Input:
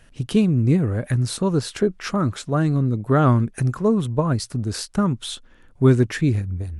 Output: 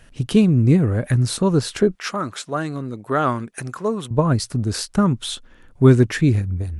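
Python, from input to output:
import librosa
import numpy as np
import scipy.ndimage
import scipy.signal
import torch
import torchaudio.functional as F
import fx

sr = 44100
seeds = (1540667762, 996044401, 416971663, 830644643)

y = fx.highpass(x, sr, hz=670.0, slope=6, at=(1.95, 4.11))
y = y * 10.0 ** (3.0 / 20.0)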